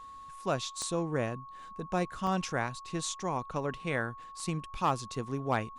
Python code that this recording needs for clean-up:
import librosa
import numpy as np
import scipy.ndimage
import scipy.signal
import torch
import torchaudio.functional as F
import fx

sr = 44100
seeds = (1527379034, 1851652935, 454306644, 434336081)

y = fx.fix_declip(x, sr, threshold_db=-19.0)
y = fx.fix_declick_ar(y, sr, threshold=10.0)
y = fx.notch(y, sr, hz=1100.0, q=30.0)
y = fx.fix_interpolate(y, sr, at_s=(2.27, 4.4), length_ms=2.0)